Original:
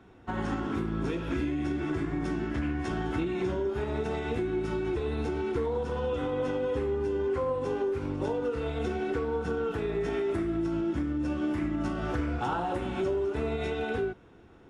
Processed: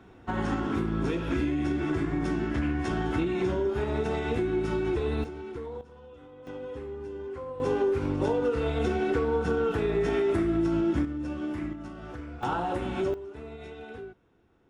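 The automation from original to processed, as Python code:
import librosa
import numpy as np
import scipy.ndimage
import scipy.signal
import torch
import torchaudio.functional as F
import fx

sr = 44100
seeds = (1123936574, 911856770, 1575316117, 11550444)

y = fx.gain(x, sr, db=fx.steps((0.0, 2.5), (5.24, -8.0), (5.81, -18.5), (6.47, -8.5), (7.6, 4.0), (11.05, -3.0), (11.73, -9.5), (12.43, 1.0), (13.14, -11.0)))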